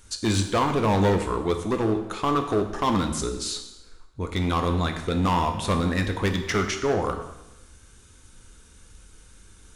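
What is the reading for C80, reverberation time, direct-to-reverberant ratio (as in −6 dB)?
10.5 dB, 0.95 s, 5.0 dB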